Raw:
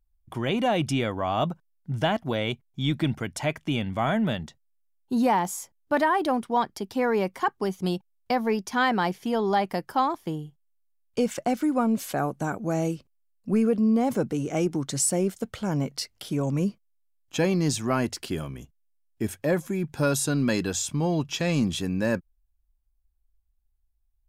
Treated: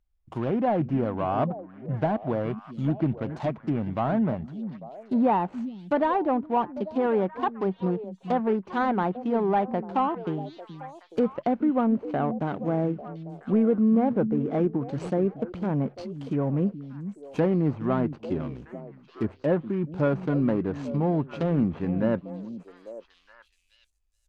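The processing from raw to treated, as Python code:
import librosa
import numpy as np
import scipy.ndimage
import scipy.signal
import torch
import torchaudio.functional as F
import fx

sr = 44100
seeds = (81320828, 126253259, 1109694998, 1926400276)

p1 = scipy.ndimage.median_filter(x, 25, mode='constant')
p2 = scipy.signal.sosfilt(scipy.signal.bessel(2, 8900.0, 'lowpass', norm='mag', fs=sr, output='sos'), p1)
p3 = fx.low_shelf(p2, sr, hz=85.0, db=-6.0)
p4 = p3 + fx.echo_stepped(p3, sr, ms=423, hz=200.0, octaves=1.4, feedback_pct=70, wet_db=-9.0, dry=0)
p5 = fx.env_lowpass_down(p4, sr, base_hz=1600.0, full_db=-24.0)
y = p5 * 10.0 ** (1.5 / 20.0)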